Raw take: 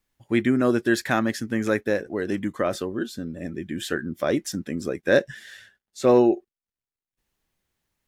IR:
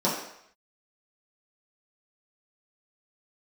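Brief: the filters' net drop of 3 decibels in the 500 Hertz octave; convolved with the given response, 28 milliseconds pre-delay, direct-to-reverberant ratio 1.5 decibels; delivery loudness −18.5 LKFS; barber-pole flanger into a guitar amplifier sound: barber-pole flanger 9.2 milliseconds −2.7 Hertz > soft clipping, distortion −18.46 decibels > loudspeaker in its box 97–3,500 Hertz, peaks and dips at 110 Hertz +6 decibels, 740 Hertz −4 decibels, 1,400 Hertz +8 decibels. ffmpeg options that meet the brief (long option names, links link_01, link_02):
-filter_complex "[0:a]equalizer=frequency=500:width_type=o:gain=-3.5,asplit=2[link_01][link_02];[1:a]atrim=start_sample=2205,adelay=28[link_03];[link_02][link_03]afir=irnorm=-1:irlink=0,volume=-15dB[link_04];[link_01][link_04]amix=inputs=2:normalize=0,asplit=2[link_05][link_06];[link_06]adelay=9.2,afreqshift=-2.7[link_07];[link_05][link_07]amix=inputs=2:normalize=1,asoftclip=threshold=-12dB,highpass=97,equalizer=frequency=110:width_type=q:width=4:gain=6,equalizer=frequency=740:width_type=q:width=4:gain=-4,equalizer=frequency=1400:width_type=q:width=4:gain=8,lowpass=frequency=3500:width=0.5412,lowpass=frequency=3500:width=1.3066,volume=6.5dB"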